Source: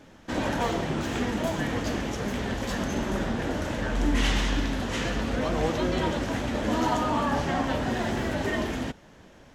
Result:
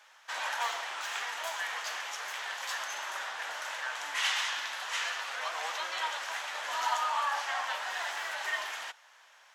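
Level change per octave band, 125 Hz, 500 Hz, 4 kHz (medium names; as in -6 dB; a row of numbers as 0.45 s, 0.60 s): under -40 dB, -16.5 dB, 0.0 dB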